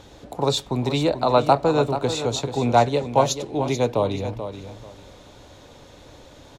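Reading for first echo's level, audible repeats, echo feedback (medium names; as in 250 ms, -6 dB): -10.0 dB, 2, 22%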